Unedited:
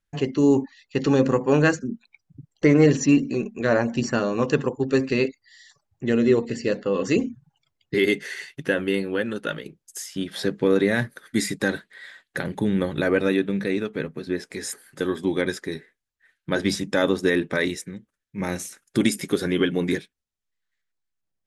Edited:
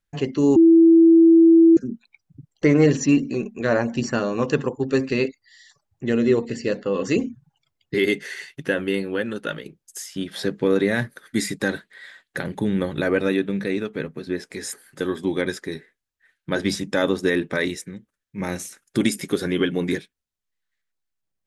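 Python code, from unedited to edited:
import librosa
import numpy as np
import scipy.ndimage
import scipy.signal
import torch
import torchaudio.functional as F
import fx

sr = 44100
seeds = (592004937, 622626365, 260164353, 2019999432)

y = fx.edit(x, sr, fx.bleep(start_s=0.56, length_s=1.21, hz=330.0, db=-8.5), tone=tone)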